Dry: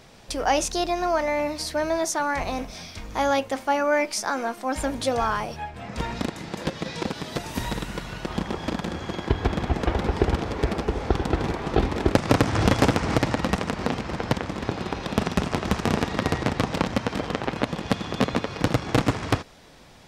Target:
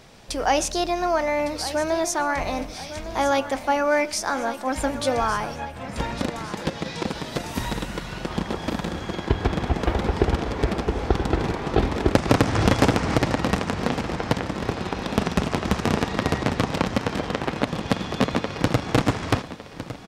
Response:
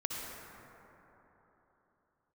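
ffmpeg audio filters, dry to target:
-filter_complex "[0:a]aecho=1:1:1157|2314|3471|4628:0.224|0.0895|0.0358|0.0143,asplit=2[link_01][link_02];[1:a]atrim=start_sample=2205,atrim=end_sample=3528,asetrate=23814,aresample=44100[link_03];[link_02][link_03]afir=irnorm=-1:irlink=0,volume=-19.5dB[link_04];[link_01][link_04]amix=inputs=2:normalize=0"

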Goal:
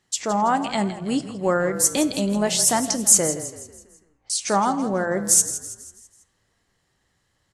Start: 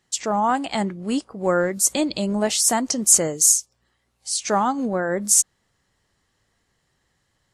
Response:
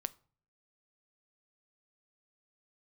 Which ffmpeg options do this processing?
-filter_complex "[0:a]asettb=1/sr,asplit=3[link_01][link_02][link_03];[link_01]atrim=end=3.364[link_04];[link_02]atrim=start=3.36:end=4.3,asetpts=PTS-STARTPTS,afade=type=in:duration=0.004:curve=qsin,afade=type=out:start_time=0.936:duration=0.004:curve=qsin,lowpass=frequency=2100:width=0.5412,lowpass=frequency=2100:width=1.3066[link_05];[link_03]atrim=start=4.296[link_06];[link_04][link_05]acrossfade=duration=0.004:curve1=hsin:curve2=qsin[link_07];[link_07][link_06]acrossfade=duration=0.004:curve1=qsin:curve2=hsin,asplit=6[link_08][link_09][link_10][link_11][link_12][link_13];[link_09]adelay=164,afreqshift=-31,volume=-13dB[link_14];[link_10]adelay=328,afreqshift=-62,volume=-19.7dB[link_15];[link_11]adelay=492,afreqshift=-93,volume=-26.5dB[link_16];[link_12]adelay=656,afreqshift=-124,volume=-33.2dB[link_17];[link_13]adelay=820,afreqshift=-155,volume=-40dB[link_18];[link_08][link_14][link_15][link_16][link_17][link_18]amix=inputs=6:normalize=0[link_19];[1:a]atrim=start_sample=2205,asetrate=25137,aresample=44100[link_20];[link_19][link_20]afir=irnorm=-1:irlink=0,volume=-2dB"

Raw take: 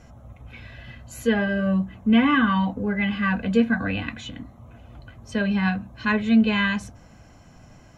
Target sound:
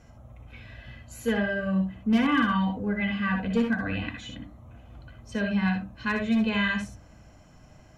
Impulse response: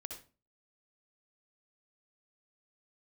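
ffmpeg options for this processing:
-filter_complex "[0:a]asoftclip=type=hard:threshold=-12.5dB[link_01];[1:a]atrim=start_sample=2205,atrim=end_sample=3528[link_02];[link_01][link_02]afir=irnorm=-1:irlink=0"

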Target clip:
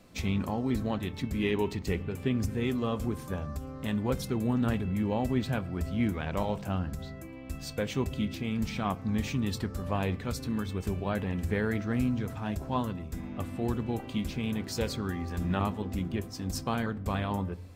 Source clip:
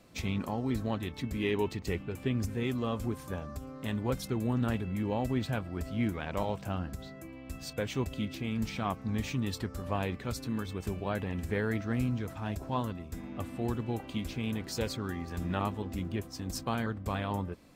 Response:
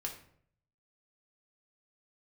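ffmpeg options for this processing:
-filter_complex "[0:a]asplit=2[link_01][link_02];[1:a]atrim=start_sample=2205,lowshelf=frequency=280:gain=12[link_03];[link_02][link_03]afir=irnorm=-1:irlink=0,volume=-12.5dB[link_04];[link_01][link_04]amix=inputs=2:normalize=0"

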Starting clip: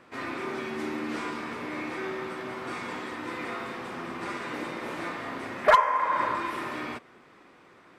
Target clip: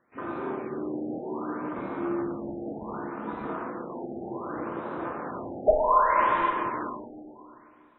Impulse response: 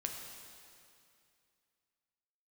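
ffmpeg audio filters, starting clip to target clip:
-filter_complex "[0:a]afwtdn=0.0251,asubboost=boost=3:cutoff=76,asplit=3[link_01][link_02][link_03];[link_01]afade=type=out:start_time=1.73:duration=0.02[link_04];[link_02]afreqshift=-36,afade=type=in:start_time=1.73:duration=0.02,afade=type=out:start_time=3.56:duration=0.02[link_05];[link_03]afade=type=in:start_time=3.56:duration=0.02[link_06];[link_04][link_05][link_06]amix=inputs=3:normalize=0[link_07];[1:a]atrim=start_sample=2205[link_08];[link_07][link_08]afir=irnorm=-1:irlink=0,afftfilt=real='re*lt(b*sr/1024,820*pow(4100/820,0.5+0.5*sin(2*PI*0.66*pts/sr)))':imag='im*lt(b*sr/1024,820*pow(4100/820,0.5+0.5*sin(2*PI*0.66*pts/sr)))':win_size=1024:overlap=0.75,volume=3.5dB"

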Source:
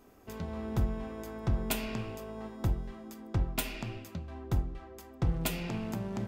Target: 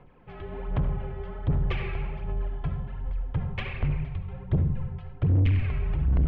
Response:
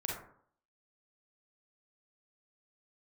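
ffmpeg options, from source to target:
-filter_complex "[0:a]asubboost=boost=10.5:cutoff=180,aphaser=in_gain=1:out_gain=1:delay=3.2:decay=0.61:speed=1.3:type=sinusoidal,highpass=frequency=160:width_type=q:width=0.5412,highpass=frequency=160:width_type=q:width=1.307,lowpass=frequency=3300:width_type=q:width=0.5176,lowpass=frequency=3300:width_type=q:width=0.7071,lowpass=frequency=3300:width_type=q:width=1.932,afreqshift=-260,asplit=2[link_01][link_02];[1:a]atrim=start_sample=2205,asetrate=26019,aresample=44100[link_03];[link_02][link_03]afir=irnorm=-1:irlink=0,volume=-7.5dB[link_04];[link_01][link_04]amix=inputs=2:normalize=0,asoftclip=type=tanh:threshold=-17dB,volume=-1dB"

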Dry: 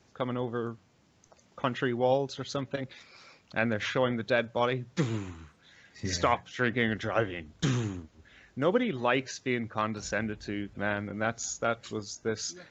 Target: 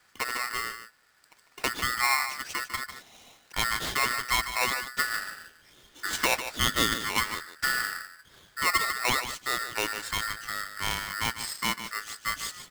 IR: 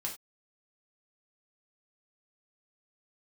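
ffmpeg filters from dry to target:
-filter_complex "[0:a]asettb=1/sr,asplit=3[link_01][link_02][link_03];[link_01]atrim=end=6.574[link_04];[link_02]atrim=start=6.57:end=6.97,asetpts=PTS-STARTPTS,afade=type=in:duration=0.004:curve=qsin,afade=type=out:start_time=0.396:duration=0.004:curve=qsin,equalizer=frequency=1800:width_type=o:width=0.71:gain=5.5[link_05];[link_03]atrim=start=6.966[link_06];[link_04][link_05]acrossfade=duration=0.004:curve1=hsin:curve2=qsin[link_07];[link_07][link_06]acrossfade=duration=0.004:curve1=qsin:curve2=hsin,aecho=1:1:149:0.299,aeval=exprs='val(0)*sgn(sin(2*PI*1600*n/s))':channel_layout=same"

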